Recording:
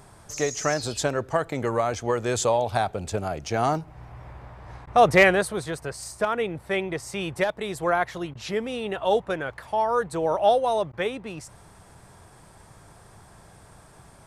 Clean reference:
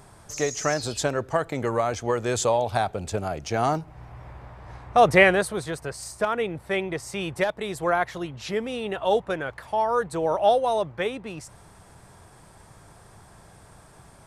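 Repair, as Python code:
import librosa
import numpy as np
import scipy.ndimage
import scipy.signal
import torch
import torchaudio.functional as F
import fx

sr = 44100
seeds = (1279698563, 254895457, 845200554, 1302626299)

y = fx.fix_declip(x, sr, threshold_db=-6.0)
y = fx.fix_interpolate(y, sr, at_s=(4.86, 8.34, 10.92), length_ms=11.0)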